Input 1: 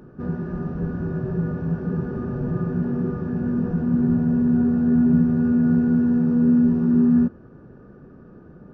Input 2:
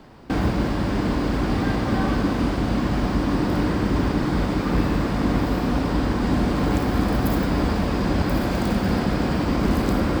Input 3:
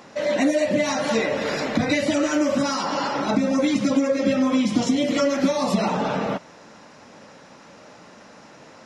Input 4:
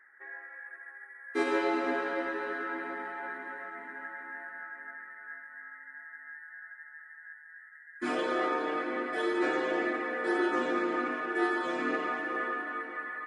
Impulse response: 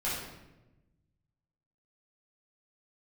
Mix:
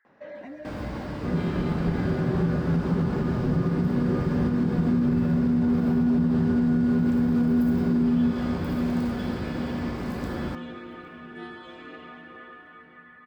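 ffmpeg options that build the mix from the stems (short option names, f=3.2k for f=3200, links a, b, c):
-filter_complex "[0:a]adelay=1050,volume=1dB,asplit=2[a][b];[b]volume=-10dB[c];[1:a]highpass=53,adelay=350,volume=-15.5dB,asplit=3[d][e][f];[e]volume=-6dB[g];[f]volume=-23dB[h];[2:a]lowpass=2k,alimiter=limit=-19.5dB:level=0:latency=1:release=341,adelay=50,volume=-13.5dB[i];[3:a]firequalizer=gain_entry='entry(2000,0);entry(3200,10);entry(5600,-4)':delay=0.05:min_phase=1,volume=-12dB[j];[4:a]atrim=start_sample=2205[k];[g][k]afir=irnorm=-1:irlink=0[l];[c][h]amix=inputs=2:normalize=0,aecho=0:1:808|1616|2424|3232|4040|4848|5656:1|0.49|0.24|0.118|0.0576|0.0282|0.0138[m];[a][d][i][j][l][m]amix=inputs=6:normalize=0,alimiter=limit=-15.5dB:level=0:latency=1:release=103"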